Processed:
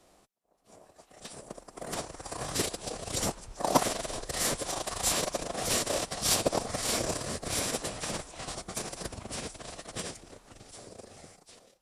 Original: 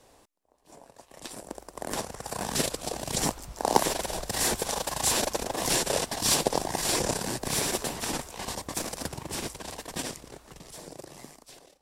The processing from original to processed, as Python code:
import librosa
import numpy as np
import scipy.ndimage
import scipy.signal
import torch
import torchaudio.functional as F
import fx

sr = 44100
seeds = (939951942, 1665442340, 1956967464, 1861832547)

y = fx.cheby_harmonics(x, sr, harmonics=(7,), levels_db=(-26,), full_scale_db=-3.5)
y = fx.pitch_keep_formants(y, sr, semitones=-7.0)
y = y * 10.0 ** (1.5 / 20.0)